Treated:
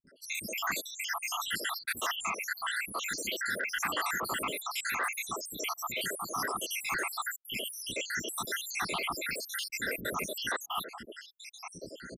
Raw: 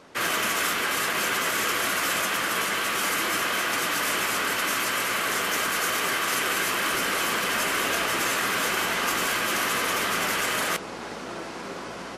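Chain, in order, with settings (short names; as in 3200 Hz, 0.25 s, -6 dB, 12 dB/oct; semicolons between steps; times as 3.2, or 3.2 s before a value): random spectral dropouts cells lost 83%; 11.29–11.71 tilt +2.5 dB/oct; soft clip -19.5 dBFS, distortion -26 dB; bands offset in time lows, highs 70 ms, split 300 Hz; gain -1 dB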